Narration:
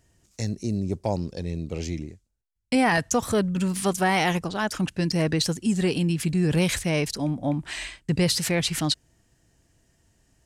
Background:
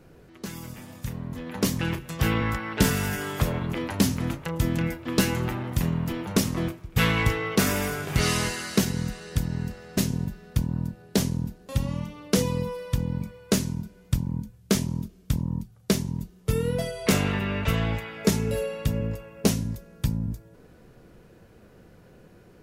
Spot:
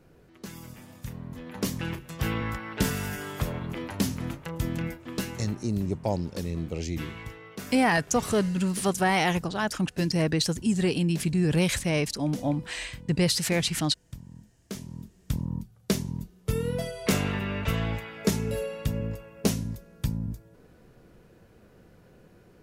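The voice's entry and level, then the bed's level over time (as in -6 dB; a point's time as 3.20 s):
5.00 s, -1.5 dB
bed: 4.87 s -5 dB
5.79 s -17.5 dB
14.59 s -17.5 dB
15.36 s -3 dB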